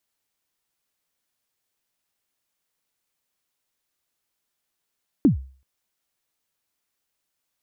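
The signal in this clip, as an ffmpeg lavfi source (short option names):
-f lavfi -i "aevalsrc='0.355*pow(10,-3*t/0.41)*sin(2*PI*(330*0.119/log(66/330)*(exp(log(66/330)*min(t,0.119)/0.119)-1)+66*max(t-0.119,0)))':d=0.38:s=44100"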